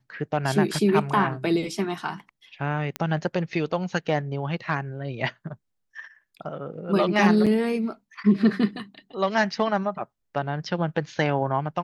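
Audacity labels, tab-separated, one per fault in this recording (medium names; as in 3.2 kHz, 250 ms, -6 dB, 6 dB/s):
2.960000	2.960000	pop -13 dBFS
7.460000	7.470000	dropout 6.1 ms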